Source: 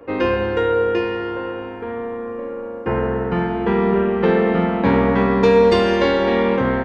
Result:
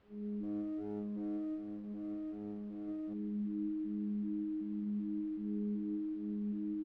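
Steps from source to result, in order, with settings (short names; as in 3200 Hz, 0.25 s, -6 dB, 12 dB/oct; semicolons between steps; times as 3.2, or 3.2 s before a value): arpeggiated vocoder bare fifth, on G#3, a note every 0.382 s; inverse Chebyshev band-stop 1000–4100 Hz, stop band 70 dB; resonant low shelf 210 Hz -10 dB, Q 1.5; comb 5.7 ms, depth 76%; compressor 12:1, threshold -32 dBFS, peak gain reduction 17.5 dB; resonator bank G#3 fifth, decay 0.5 s; added noise pink -69 dBFS; air absorption 350 m; echo 0.208 s -5 dB; 0.43–3.14 running maximum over 17 samples; gain +2.5 dB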